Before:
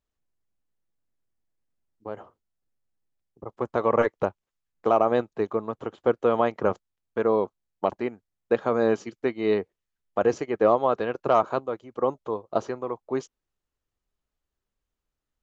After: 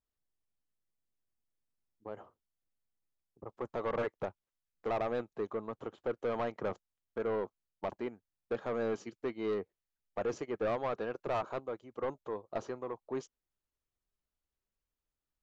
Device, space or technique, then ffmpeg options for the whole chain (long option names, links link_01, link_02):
saturation between pre-emphasis and de-emphasis: -af "highshelf=frequency=4800:gain=11.5,asoftclip=type=tanh:threshold=-20.5dB,highshelf=frequency=4800:gain=-11.5,volume=-7.5dB"